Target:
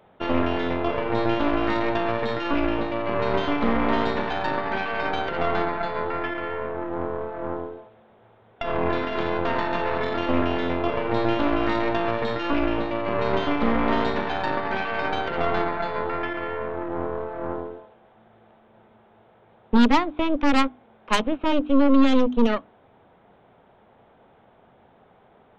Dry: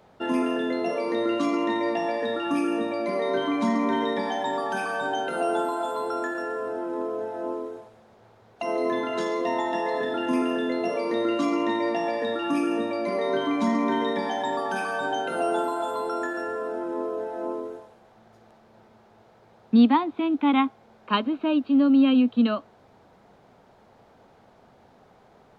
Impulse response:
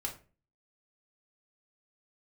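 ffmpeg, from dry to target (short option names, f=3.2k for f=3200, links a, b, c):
-af "aresample=8000,aresample=44100,aeval=exprs='0.355*(cos(1*acos(clip(val(0)/0.355,-1,1)))-cos(1*PI/2))+0.0891*(cos(6*acos(clip(val(0)/0.355,-1,1)))-cos(6*PI/2))':c=same,bandreject=f=50:t=h:w=6,bandreject=f=100:t=h:w=6,bandreject=f=150:t=h:w=6,bandreject=f=200:t=h:w=6,bandreject=f=250:t=h:w=6,bandreject=f=300:t=h:w=6"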